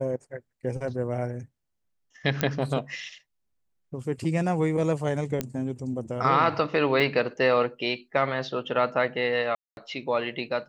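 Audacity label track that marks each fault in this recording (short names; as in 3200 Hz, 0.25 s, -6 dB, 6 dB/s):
2.410000	2.410000	pop -9 dBFS
5.410000	5.410000	pop -12 dBFS
7.000000	7.000000	gap 4 ms
9.550000	9.770000	gap 0.221 s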